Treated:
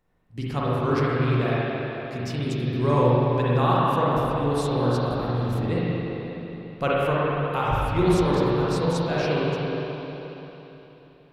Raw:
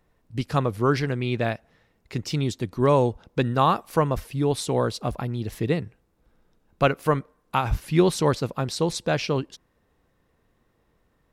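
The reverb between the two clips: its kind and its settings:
spring reverb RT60 3.6 s, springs 41/49/59 ms, chirp 30 ms, DRR −7.5 dB
level −7 dB

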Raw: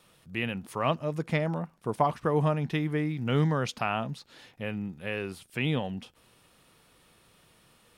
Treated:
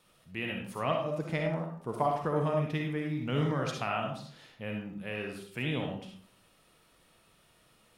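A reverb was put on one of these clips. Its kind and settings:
comb and all-pass reverb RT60 0.53 s, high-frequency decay 0.6×, pre-delay 20 ms, DRR 0.5 dB
level −5.5 dB

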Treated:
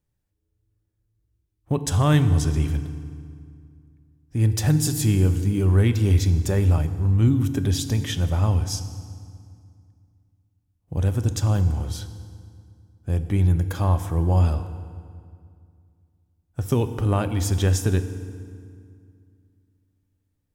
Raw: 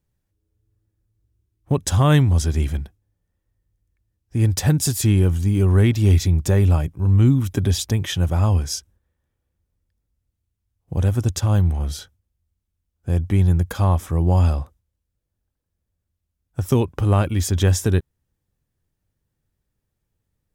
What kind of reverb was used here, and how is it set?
feedback delay network reverb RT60 2.2 s, low-frequency decay 1.3×, high-frequency decay 0.75×, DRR 9.5 dB
level −3.5 dB

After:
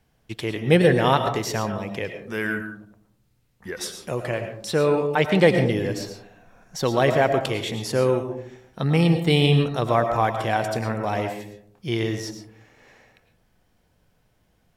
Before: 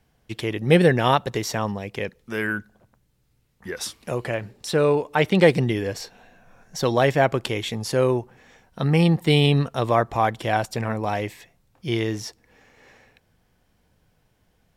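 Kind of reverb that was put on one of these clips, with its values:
comb and all-pass reverb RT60 0.65 s, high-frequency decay 0.3×, pre-delay 70 ms, DRR 6.5 dB
level −1 dB

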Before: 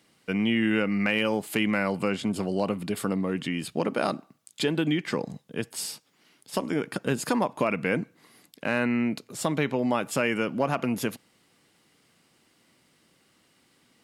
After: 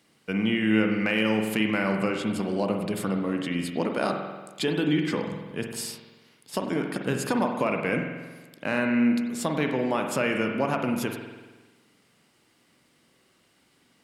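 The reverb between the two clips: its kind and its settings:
spring reverb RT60 1.3 s, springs 46 ms, chirp 55 ms, DRR 3.5 dB
level −1 dB

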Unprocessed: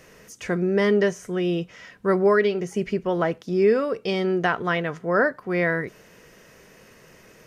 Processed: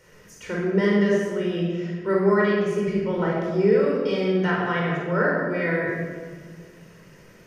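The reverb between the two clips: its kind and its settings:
rectangular room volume 2,100 cubic metres, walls mixed, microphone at 4.6 metres
level −8.5 dB

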